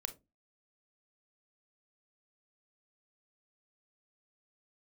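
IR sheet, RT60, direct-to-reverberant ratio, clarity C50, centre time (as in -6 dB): 0.20 s, 8.0 dB, 14.5 dB, 7 ms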